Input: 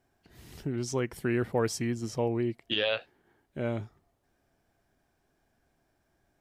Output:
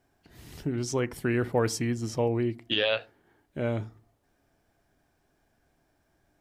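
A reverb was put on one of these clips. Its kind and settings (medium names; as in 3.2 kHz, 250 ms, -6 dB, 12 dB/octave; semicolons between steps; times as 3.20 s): FDN reverb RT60 0.37 s, low-frequency decay 1.45×, high-frequency decay 0.35×, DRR 16 dB; trim +2.5 dB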